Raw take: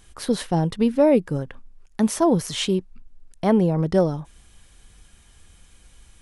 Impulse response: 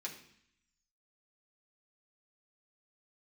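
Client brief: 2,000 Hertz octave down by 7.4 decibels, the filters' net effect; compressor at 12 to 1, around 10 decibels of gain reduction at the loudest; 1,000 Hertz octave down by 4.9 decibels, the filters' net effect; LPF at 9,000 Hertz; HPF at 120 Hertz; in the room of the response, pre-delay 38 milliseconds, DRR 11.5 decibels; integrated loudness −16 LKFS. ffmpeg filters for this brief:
-filter_complex "[0:a]highpass=120,lowpass=9000,equalizer=frequency=1000:width_type=o:gain=-5.5,equalizer=frequency=2000:width_type=o:gain=-8,acompressor=threshold=-24dB:ratio=12,asplit=2[link_01][link_02];[1:a]atrim=start_sample=2205,adelay=38[link_03];[link_02][link_03]afir=irnorm=-1:irlink=0,volume=-10.5dB[link_04];[link_01][link_04]amix=inputs=2:normalize=0,volume=14dB"

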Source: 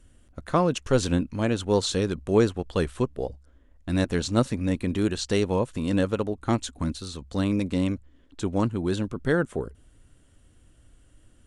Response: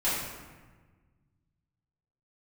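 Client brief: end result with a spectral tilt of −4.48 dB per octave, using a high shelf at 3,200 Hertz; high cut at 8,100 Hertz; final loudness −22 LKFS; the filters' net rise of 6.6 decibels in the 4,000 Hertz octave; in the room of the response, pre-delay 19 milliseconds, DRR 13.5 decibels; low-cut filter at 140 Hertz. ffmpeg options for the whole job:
-filter_complex "[0:a]highpass=140,lowpass=8100,highshelf=frequency=3200:gain=7,equalizer=frequency=4000:width_type=o:gain=3,asplit=2[link_01][link_02];[1:a]atrim=start_sample=2205,adelay=19[link_03];[link_02][link_03]afir=irnorm=-1:irlink=0,volume=-24dB[link_04];[link_01][link_04]amix=inputs=2:normalize=0,volume=4dB"

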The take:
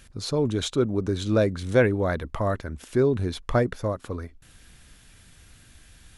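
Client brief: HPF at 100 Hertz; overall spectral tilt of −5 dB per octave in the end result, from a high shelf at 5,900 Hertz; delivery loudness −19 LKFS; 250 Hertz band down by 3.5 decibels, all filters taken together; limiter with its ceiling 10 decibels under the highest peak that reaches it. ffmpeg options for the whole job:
ffmpeg -i in.wav -af "highpass=100,equalizer=frequency=250:width_type=o:gain=-4.5,highshelf=frequency=5900:gain=6,volume=11.5dB,alimiter=limit=-7dB:level=0:latency=1" out.wav

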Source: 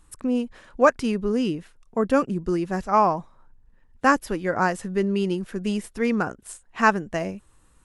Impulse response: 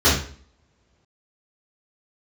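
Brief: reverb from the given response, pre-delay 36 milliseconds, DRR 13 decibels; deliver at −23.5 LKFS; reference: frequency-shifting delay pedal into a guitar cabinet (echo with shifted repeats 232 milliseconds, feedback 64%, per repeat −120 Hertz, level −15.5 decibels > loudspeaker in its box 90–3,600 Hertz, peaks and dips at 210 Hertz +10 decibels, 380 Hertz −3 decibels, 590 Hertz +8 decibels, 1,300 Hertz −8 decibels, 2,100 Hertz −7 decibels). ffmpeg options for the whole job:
-filter_complex "[0:a]asplit=2[link_01][link_02];[1:a]atrim=start_sample=2205,adelay=36[link_03];[link_02][link_03]afir=irnorm=-1:irlink=0,volume=-34.5dB[link_04];[link_01][link_04]amix=inputs=2:normalize=0,asplit=8[link_05][link_06][link_07][link_08][link_09][link_10][link_11][link_12];[link_06]adelay=232,afreqshift=-120,volume=-15.5dB[link_13];[link_07]adelay=464,afreqshift=-240,volume=-19.4dB[link_14];[link_08]adelay=696,afreqshift=-360,volume=-23.3dB[link_15];[link_09]adelay=928,afreqshift=-480,volume=-27.1dB[link_16];[link_10]adelay=1160,afreqshift=-600,volume=-31dB[link_17];[link_11]adelay=1392,afreqshift=-720,volume=-34.9dB[link_18];[link_12]adelay=1624,afreqshift=-840,volume=-38.8dB[link_19];[link_05][link_13][link_14][link_15][link_16][link_17][link_18][link_19]amix=inputs=8:normalize=0,highpass=90,equalizer=frequency=210:width_type=q:width=4:gain=10,equalizer=frequency=380:width_type=q:width=4:gain=-3,equalizer=frequency=590:width_type=q:width=4:gain=8,equalizer=frequency=1300:width_type=q:width=4:gain=-8,equalizer=frequency=2100:width_type=q:width=4:gain=-7,lowpass=frequency=3600:width=0.5412,lowpass=frequency=3600:width=1.3066,volume=-3.5dB"

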